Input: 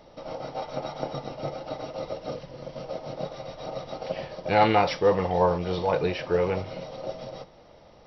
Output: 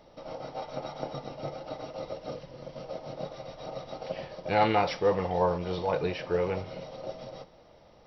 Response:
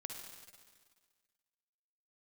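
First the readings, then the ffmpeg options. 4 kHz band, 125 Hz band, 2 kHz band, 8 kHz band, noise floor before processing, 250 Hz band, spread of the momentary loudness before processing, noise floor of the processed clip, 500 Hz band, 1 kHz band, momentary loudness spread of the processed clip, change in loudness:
-4.0 dB, -4.0 dB, -4.0 dB, no reading, -53 dBFS, -4.0 dB, 16 LU, -57 dBFS, -4.0 dB, -4.0 dB, 16 LU, -4.0 dB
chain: -filter_complex "[0:a]asplit=2[s0][s1];[1:a]atrim=start_sample=2205[s2];[s1][s2]afir=irnorm=-1:irlink=0,volume=0.211[s3];[s0][s3]amix=inputs=2:normalize=0,volume=0.562"

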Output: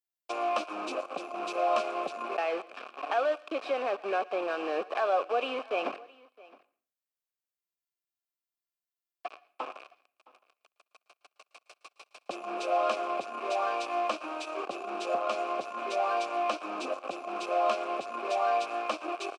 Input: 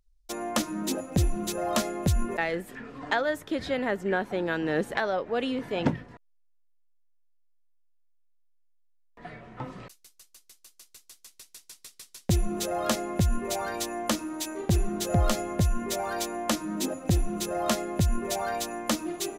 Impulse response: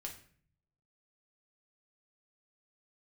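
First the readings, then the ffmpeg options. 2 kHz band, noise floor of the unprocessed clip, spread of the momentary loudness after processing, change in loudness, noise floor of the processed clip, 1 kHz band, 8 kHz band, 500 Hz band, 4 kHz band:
-3.5 dB, -63 dBFS, 12 LU, -3.0 dB, under -85 dBFS, +3.5 dB, -17.0 dB, 0.0 dB, -6.0 dB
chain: -filter_complex "[0:a]highshelf=f=2500:g=3.5,asplit=2[s0][s1];[s1]acompressor=threshold=0.0251:ratio=10,volume=1.33[s2];[s0][s2]amix=inputs=2:normalize=0,aeval=exprs='0.501*(cos(1*acos(clip(val(0)/0.501,-1,1)))-cos(1*PI/2))+0.0141*(cos(3*acos(clip(val(0)/0.501,-1,1)))-cos(3*PI/2))+0.02*(cos(4*acos(clip(val(0)/0.501,-1,1)))-cos(4*PI/2))+0.178*(cos(5*acos(clip(val(0)/0.501,-1,1)))-cos(5*PI/2))':c=same,aeval=exprs='val(0)*gte(abs(val(0)),0.1)':c=same,asplit=3[s3][s4][s5];[s3]bandpass=f=730:t=q:w=8,volume=1[s6];[s4]bandpass=f=1090:t=q:w=8,volume=0.501[s7];[s5]bandpass=f=2440:t=q:w=8,volume=0.355[s8];[s6][s7][s8]amix=inputs=3:normalize=0,highpass=f=280:w=0.5412,highpass=f=280:w=1.3066,equalizer=f=730:t=q:w=4:g=-9,equalizer=f=3500:t=q:w=4:g=-4,equalizer=f=6800:t=q:w=4:g=-6,lowpass=f=9000:w=0.5412,lowpass=f=9000:w=1.3066,aecho=1:1:665:0.0708,asplit=2[s9][s10];[1:a]atrim=start_sample=2205,lowshelf=f=470:g=-5,adelay=113[s11];[s10][s11]afir=irnorm=-1:irlink=0,volume=0.158[s12];[s9][s12]amix=inputs=2:normalize=0,volume=1.33" -ar 44100 -c:a nellymoser

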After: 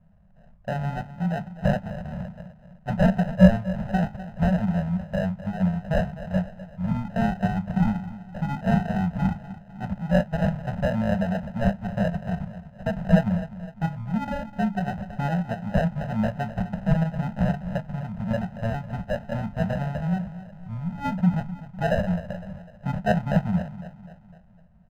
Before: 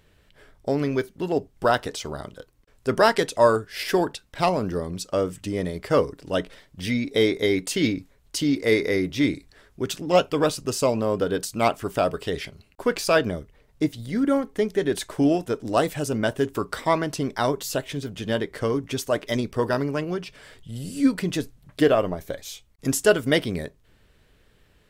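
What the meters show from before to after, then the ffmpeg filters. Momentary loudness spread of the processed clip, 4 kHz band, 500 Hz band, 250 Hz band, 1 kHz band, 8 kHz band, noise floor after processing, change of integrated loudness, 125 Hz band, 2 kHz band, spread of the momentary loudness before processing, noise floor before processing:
12 LU, -13.5 dB, -7.0 dB, +1.0 dB, -3.5 dB, under -20 dB, -51 dBFS, -2.0 dB, +7.5 dB, -5.0 dB, 13 LU, -60 dBFS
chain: -filter_complex "[0:a]equalizer=f=12000:t=o:w=1.1:g=-10,bandreject=f=50:t=h:w=6,bandreject=f=100:t=h:w=6,bandreject=f=150:t=h:w=6,bandreject=f=200:t=h:w=6,bandreject=f=250:t=h:w=6,bandreject=f=300:t=h:w=6,bandreject=f=350:t=h:w=6,asplit=2[s0][s1];[s1]adelay=19,volume=0.266[s2];[s0][s2]amix=inputs=2:normalize=0,asplit=2[s3][s4];[s4]aecho=0:1:252|504|756|1008|1260:0.178|0.0889|0.0445|0.0222|0.0111[s5];[s3][s5]amix=inputs=2:normalize=0,acrusher=samples=39:mix=1:aa=0.000001,firequalizer=gain_entry='entry(130,0);entry(190,11);entry(290,-26);entry(410,-24);entry(590,-4);entry(3900,-21);entry(10000,-30)':delay=0.05:min_phase=1,volume=1.26"

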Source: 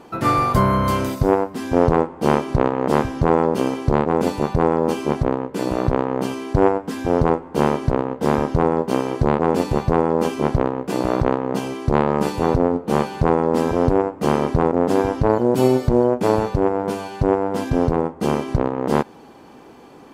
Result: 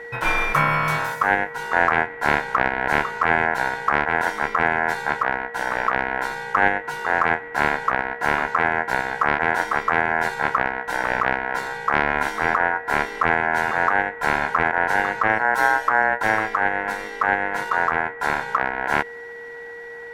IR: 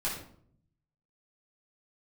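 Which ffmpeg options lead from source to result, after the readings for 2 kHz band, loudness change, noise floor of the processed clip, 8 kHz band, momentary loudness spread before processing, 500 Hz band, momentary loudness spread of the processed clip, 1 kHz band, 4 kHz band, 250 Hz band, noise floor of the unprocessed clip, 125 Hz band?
+14.5 dB, -1.5 dB, -36 dBFS, -2.5 dB, 5 LU, -9.0 dB, 5 LU, +2.0 dB, +0.5 dB, -13.5 dB, -43 dBFS, -13.0 dB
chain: -af "aeval=exprs='val(0)+0.0282*sin(2*PI*730*n/s)':c=same,aeval=exprs='val(0)*sin(2*PI*1200*n/s)':c=same"

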